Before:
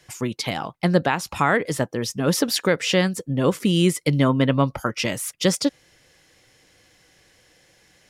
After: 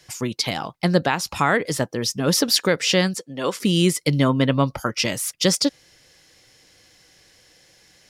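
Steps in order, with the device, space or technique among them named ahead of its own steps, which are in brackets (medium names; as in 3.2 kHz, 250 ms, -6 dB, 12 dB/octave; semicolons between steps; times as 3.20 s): 3.14–3.60 s: frequency weighting A; presence and air boost (peaking EQ 4.9 kHz +6 dB 0.9 oct; treble shelf 9.9 kHz +4 dB)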